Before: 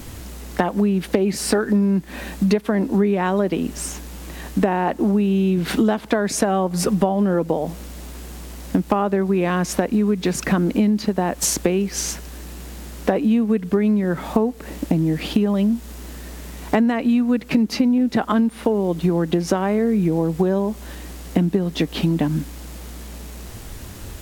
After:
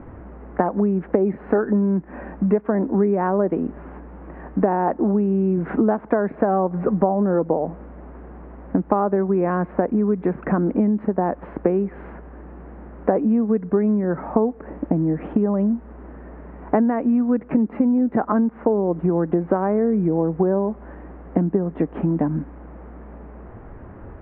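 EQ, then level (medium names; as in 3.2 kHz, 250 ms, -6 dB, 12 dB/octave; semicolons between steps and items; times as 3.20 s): Bessel low-pass 1.1 kHz, order 6; distance through air 340 m; bass shelf 240 Hz -10 dB; +4.5 dB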